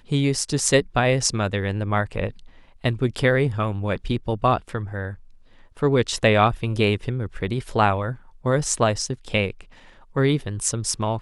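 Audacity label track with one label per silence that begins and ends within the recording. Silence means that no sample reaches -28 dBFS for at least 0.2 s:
2.300000	2.840000	silence
5.130000	5.820000	silence
8.130000	8.450000	silence
9.610000	10.160000	silence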